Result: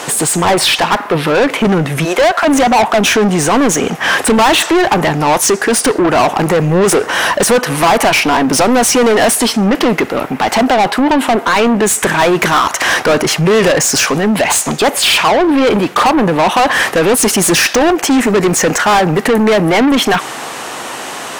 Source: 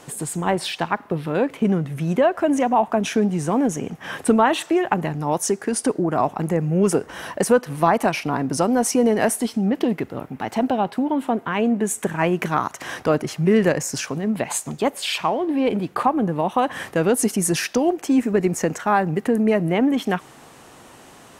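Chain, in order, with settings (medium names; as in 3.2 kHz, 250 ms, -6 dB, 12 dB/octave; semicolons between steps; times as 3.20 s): 2.04–2.44 s: high-pass 290 Hz -> 770 Hz 24 dB/octave; overdrive pedal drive 31 dB, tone 7.8 kHz, clips at -2.5 dBFS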